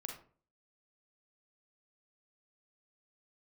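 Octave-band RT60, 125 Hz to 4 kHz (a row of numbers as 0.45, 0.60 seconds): 0.55, 0.50, 0.45, 0.40, 0.30, 0.25 seconds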